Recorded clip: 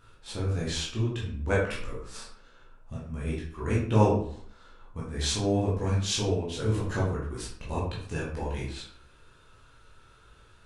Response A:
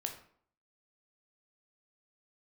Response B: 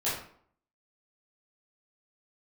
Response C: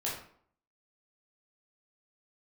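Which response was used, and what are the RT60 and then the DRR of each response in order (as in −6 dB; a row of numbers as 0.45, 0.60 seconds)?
C; 0.60, 0.60, 0.60 seconds; 3.5, −11.0, −6.5 decibels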